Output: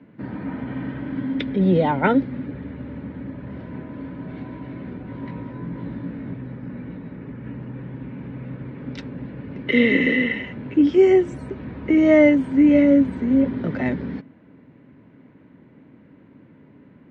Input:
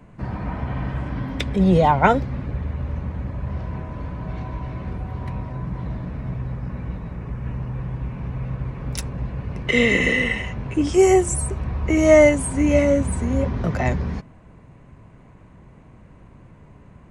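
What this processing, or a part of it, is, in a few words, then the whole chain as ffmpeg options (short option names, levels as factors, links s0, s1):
kitchen radio: -filter_complex "[0:a]highpass=180,equalizer=f=270:t=q:w=4:g=10,equalizer=f=720:t=q:w=4:g=-9,equalizer=f=1100:t=q:w=4:g=-10,equalizer=f=2600:t=q:w=4:g=-5,lowpass=f=3600:w=0.5412,lowpass=f=3600:w=1.3066,asettb=1/sr,asplit=3[s0][s1][s2];[s0]atrim=end=5.054[s3];[s1]atrim=start=5.05:end=6.33,asetpts=PTS-STARTPTS,afade=t=in:d=0.004:c=qsin,afade=t=out:st=1.276:d=0.004:c=qsin,asplit=2[s4][s5];[s5]adelay=18,volume=0.631[s6];[s4][s6]amix=inputs=2:normalize=0,atrim=end_sample=56448[s7];[s2]atrim=start=6.326[s8];[s3][s7]acrossfade=d=0.004:c1=hsin:c2=qsin[s9];[s9][s8]acrossfade=d=0.004:c1=qsin:c2=hsin"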